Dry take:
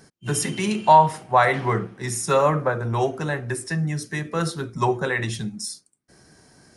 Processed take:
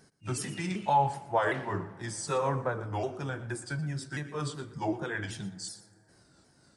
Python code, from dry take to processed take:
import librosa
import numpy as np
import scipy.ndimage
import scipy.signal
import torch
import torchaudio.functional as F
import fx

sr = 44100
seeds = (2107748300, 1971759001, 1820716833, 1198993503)

p1 = fx.pitch_ramps(x, sr, semitones=-3.0, every_ms=379)
p2 = p1 + fx.echo_single(p1, sr, ms=119, db=-16.0, dry=0)
p3 = fx.rev_plate(p2, sr, seeds[0], rt60_s=3.0, hf_ratio=0.45, predelay_ms=0, drr_db=18.5)
y = F.gain(torch.from_numpy(p3), -8.5).numpy()